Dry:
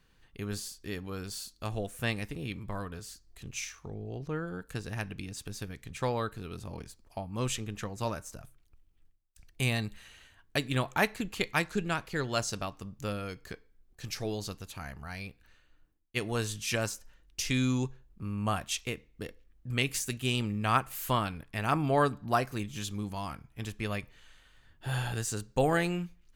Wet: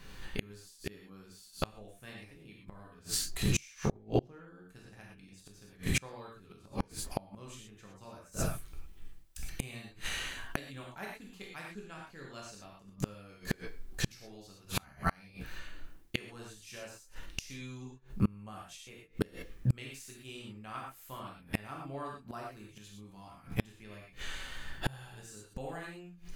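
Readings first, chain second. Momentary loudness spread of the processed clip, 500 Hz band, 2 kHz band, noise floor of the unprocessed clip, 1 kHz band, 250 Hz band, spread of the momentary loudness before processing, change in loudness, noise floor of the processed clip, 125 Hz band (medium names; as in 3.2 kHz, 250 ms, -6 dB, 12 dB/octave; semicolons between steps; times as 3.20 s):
19 LU, -8.5 dB, -7.0 dB, -65 dBFS, -10.0 dB, -5.5 dB, 14 LU, -6.0 dB, -59 dBFS, -5.0 dB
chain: gated-style reverb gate 140 ms flat, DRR -3 dB; inverted gate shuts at -28 dBFS, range -32 dB; trim +12.5 dB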